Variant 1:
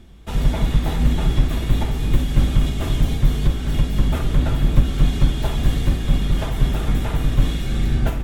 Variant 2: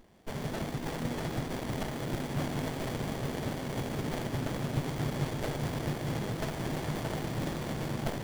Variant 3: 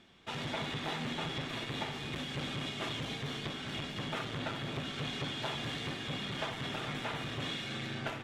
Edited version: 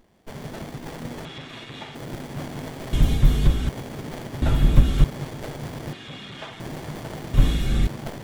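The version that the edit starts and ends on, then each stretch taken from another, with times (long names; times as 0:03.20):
2
0:01.25–0:01.95: punch in from 3
0:02.93–0:03.69: punch in from 1
0:04.42–0:05.04: punch in from 1
0:05.93–0:06.60: punch in from 3
0:07.34–0:07.87: punch in from 1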